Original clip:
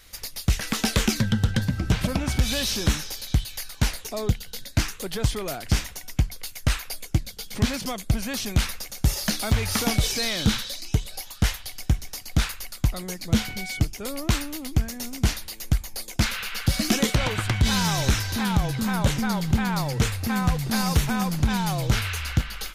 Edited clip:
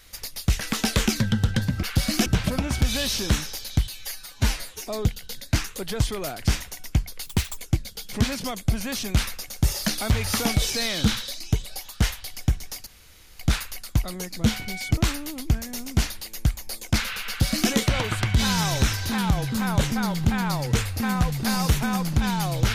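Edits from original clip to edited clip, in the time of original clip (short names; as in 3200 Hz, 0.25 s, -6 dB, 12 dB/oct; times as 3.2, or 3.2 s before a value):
3.46–4.12 stretch 1.5×
6.5–6.99 speed 156%
12.28 insert room tone 0.53 s
13.86–14.24 cut
16.54–16.97 copy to 1.83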